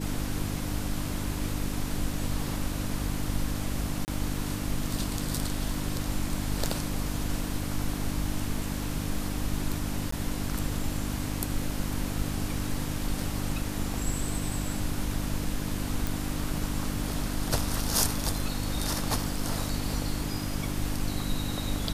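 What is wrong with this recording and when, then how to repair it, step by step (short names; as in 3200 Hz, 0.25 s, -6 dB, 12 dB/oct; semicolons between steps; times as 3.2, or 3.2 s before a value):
hum 50 Hz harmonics 6 -34 dBFS
4.05–4.08 gap 29 ms
10.11–10.12 gap 14 ms
16.07 pop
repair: de-click; de-hum 50 Hz, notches 6; interpolate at 4.05, 29 ms; interpolate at 10.11, 14 ms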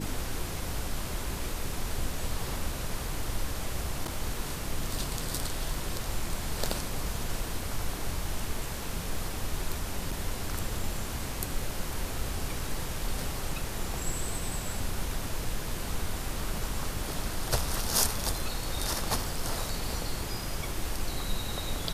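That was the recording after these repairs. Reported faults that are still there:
none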